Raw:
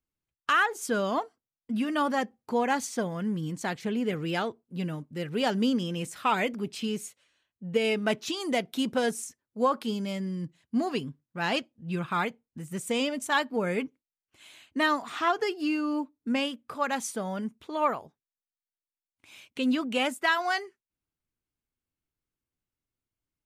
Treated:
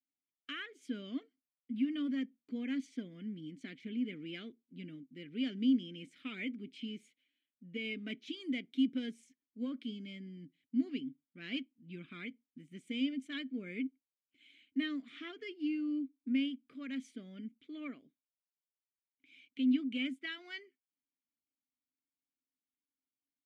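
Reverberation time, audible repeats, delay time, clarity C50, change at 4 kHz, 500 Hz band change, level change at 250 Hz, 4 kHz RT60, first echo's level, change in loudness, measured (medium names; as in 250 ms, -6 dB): no reverb, no echo, no echo, no reverb, -10.5 dB, -20.5 dB, -5.0 dB, no reverb, no echo, -9.5 dB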